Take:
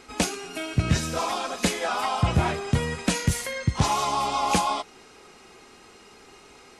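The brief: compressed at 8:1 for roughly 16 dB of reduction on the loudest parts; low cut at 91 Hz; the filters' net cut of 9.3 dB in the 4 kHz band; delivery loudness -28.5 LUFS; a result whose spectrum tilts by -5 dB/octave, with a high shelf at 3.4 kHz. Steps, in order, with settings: high-pass 91 Hz; treble shelf 3.4 kHz -5 dB; peaking EQ 4 kHz -9 dB; compression 8:1, threshold -37 dBFS; trim +13 dB

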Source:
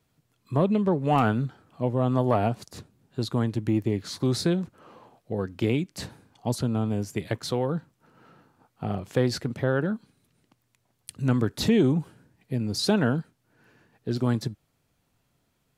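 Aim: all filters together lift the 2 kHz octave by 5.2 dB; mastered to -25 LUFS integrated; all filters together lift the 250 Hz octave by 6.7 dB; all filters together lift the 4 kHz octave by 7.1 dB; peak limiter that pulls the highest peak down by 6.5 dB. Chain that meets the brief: peaking EQ 250 Hz +8 dB; peaking EQ 2 kHz +5.5 dB; peaking EQ 4 kHz +7 dB; trim -1 dB; peak limiter -13 dBFS

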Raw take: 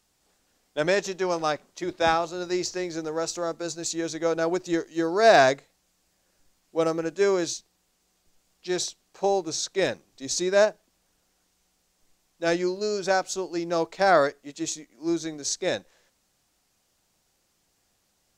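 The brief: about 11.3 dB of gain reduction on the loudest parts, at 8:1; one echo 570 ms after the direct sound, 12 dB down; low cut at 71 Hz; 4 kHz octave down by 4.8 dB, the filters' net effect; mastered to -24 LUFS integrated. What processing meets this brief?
high-pass 71 Hz; peaking EQ 4 kHz -6 dB; compression 8:1, threshold -24 dBFS; delay 570 ms -12 dB; trim +7 dB

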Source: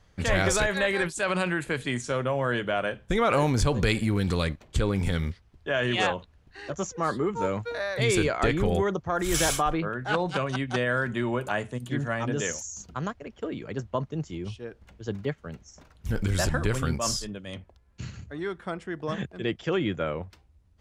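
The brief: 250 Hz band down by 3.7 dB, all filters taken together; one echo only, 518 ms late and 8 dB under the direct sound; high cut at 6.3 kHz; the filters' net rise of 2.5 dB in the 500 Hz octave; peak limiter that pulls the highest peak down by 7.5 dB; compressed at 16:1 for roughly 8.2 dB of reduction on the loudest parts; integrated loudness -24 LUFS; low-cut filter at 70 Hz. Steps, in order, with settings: high-pass 70 Hz; low-pass 6.3 kHz; peaking EQ 250 Hz -7.5 dB; peaking EQ 500 Hz +5 dB; compression 16:1, threshold -26 dBFS; peak limiter -22 dBFS; delay 518 ms -8 dB; trim +9.5 dB

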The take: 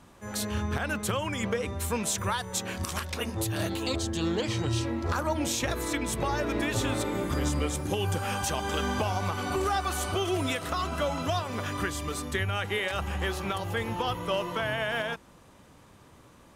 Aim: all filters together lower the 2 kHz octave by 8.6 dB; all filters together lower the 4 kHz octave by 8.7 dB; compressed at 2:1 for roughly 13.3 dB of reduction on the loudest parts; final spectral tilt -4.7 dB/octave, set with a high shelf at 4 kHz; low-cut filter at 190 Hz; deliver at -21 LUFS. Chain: high-pass 190 Hz; peaking EQ 2 kHz -9 dB; treble shelf 4 kHz -8.5 dB; peaking EQ 4 kHz -3 dB; compression 2:1, threshold -52 dBFS; trim +24.5 dB

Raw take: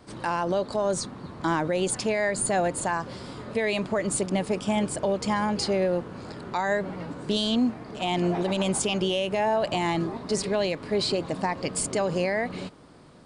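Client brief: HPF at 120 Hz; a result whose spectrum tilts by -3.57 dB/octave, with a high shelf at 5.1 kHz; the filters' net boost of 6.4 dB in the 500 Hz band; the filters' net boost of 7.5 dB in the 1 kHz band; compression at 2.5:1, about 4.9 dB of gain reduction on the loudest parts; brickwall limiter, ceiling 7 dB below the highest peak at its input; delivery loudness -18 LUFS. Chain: high-pass 120 Hz; peaking EQ 500 Hz +6 dB; peaking EQ 1 kHz +7 dB; treble shelf 5.1 kHz +6 dB; compression 2.5:1, threshold -22 dBFS; trim +9.5 dB; peak limiter -8 dBFS

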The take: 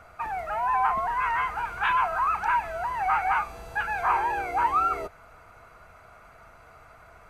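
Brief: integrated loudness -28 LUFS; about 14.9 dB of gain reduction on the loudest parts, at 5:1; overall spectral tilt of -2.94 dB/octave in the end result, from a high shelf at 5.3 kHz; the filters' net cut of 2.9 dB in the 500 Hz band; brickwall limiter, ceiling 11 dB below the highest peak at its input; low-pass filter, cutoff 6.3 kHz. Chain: low-pass 6.3 kHz; peaking EQ 500 Hz -4.5 dB; treble shelf 5.3 kHz -8 dB; compression 5:1, threshold -38 dBFS; trim +18.5 dB; peak limiter -20 dBFS

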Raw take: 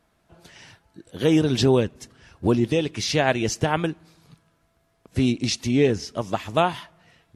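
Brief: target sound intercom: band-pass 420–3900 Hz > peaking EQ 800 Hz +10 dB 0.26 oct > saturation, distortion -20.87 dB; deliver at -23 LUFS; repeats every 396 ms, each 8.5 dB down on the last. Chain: band-pass 420–3900 Hz; peaking EQ 800 Hz +10 dB 0.26 oct; feedback delay 396 ms, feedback 38%, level -8.5 dB; saturation -8 dBFS; trim +2.5 dB

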